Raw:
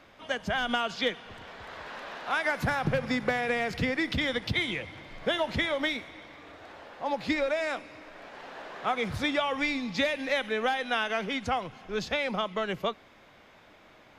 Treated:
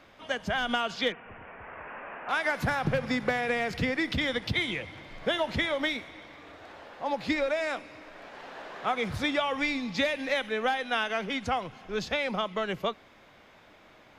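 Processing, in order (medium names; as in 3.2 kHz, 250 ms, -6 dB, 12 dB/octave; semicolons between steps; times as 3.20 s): 1.12–2.29 s: elliptic low-pass 2.6 kHz, stop band 40 dB; 10.34–11.30 s: three bands expanded up and down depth 40%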